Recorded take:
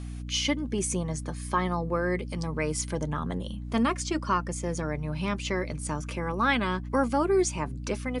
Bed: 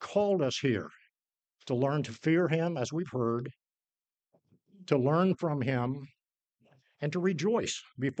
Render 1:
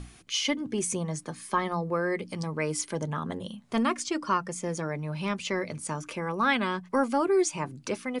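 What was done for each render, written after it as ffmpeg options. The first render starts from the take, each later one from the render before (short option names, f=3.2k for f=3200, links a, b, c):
-af "bandreject=f=60:t=h:w=6,bandreject=f=120:t=h:w=6,bandreject=f=180:t=h:w=6,bandreject=f=240:t=h:w=6,bandreject=f=300:t=h:w=6"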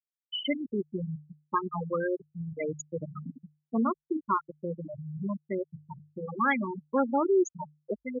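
-af "afftfilt=real='re*gte(hypot(re,im),0.178)':imag='im*gte(hypot(re,im),0.178)':win_size=1024:overlap=0.75,bandreject=f=50:t=h:w=6,bandreject=f=100:t=h:w=6,bandreject=f=150:t=h:w=6"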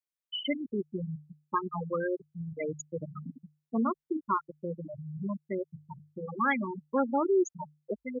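-af "volume=-1.5dB"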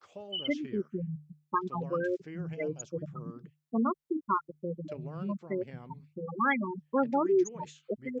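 -filter_complex "[1:a]volume=-18dB[a];[0:a][a]amix=inputs=2:normalize=0"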